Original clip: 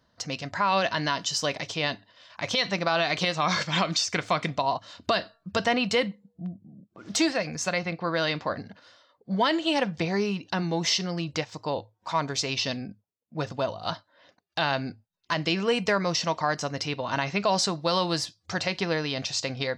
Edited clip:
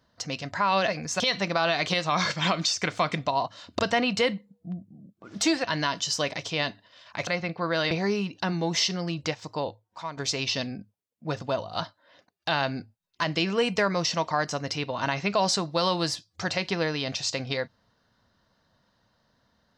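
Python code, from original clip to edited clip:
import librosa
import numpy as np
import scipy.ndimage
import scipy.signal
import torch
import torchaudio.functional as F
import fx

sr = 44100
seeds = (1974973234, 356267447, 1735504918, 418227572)

y = fx.edit(x, sr, fx.swap(start_s=0.88, length_s=1.63, other_s=7.38, other_length_s=0.32),
    fx.cut(start_s=5.1, length_s=0.43),
    fx.cut(start_s=8.34, length_s=1.67),
    fx.fade_out_to(start_s=11.65, length_s=0.62, floor_db=-12.5), tone=tone)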